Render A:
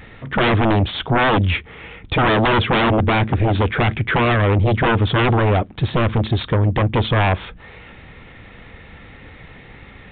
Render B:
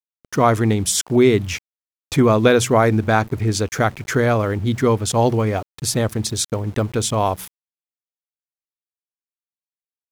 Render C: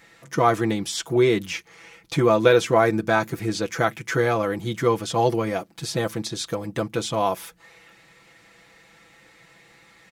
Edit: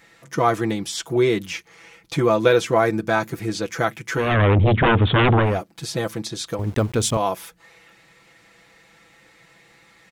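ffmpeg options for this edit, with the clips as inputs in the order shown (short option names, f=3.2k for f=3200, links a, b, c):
-filter_complex "[2:a]asplit=3[a][b][c];[a]atrim=end=4.39[d];[0:a]atrim=start=4.15:end=5.63[e];[b]atrim=start=5.39:end=6.592[f];[1:a]atrim=start=6.588:end=7.172[g];[c]atrim=start=7.168[h];[d][e]acrossfade=d=0.24:c1=tri:c2=tri[i];[i][f]acrossfade=d=0.24:c1=tri:c2=tri[j];[j][g]acrossfade=d=0.004:c1=hsin:c2=hsin[k];[k][h]acrossfade=d=0.004:c1=hsin:c2=hsin"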